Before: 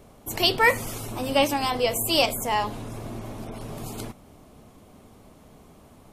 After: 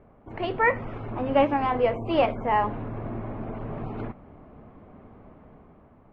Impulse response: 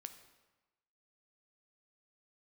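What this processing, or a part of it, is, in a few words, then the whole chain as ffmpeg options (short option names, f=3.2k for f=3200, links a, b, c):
action camera in a waterproof case: -af "lowpass=f=2k:w=0.5412,lowpass=f=2k:w=1.3066,dynaudnorm=f=220:g=7:m=6dB,volume=-3.5dB" -ar 32000 -c:a aac -b:a 48k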